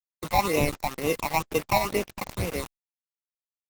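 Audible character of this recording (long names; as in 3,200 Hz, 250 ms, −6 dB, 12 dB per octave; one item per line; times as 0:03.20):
aliases and images of a low sample rate 1,600 Hz, jitter 0%
phaser sweep stages 8, 2.1 Hz, lowest notch 390–1,400 Hz
a quantiser's noise floor 6 bits, dither none
Opus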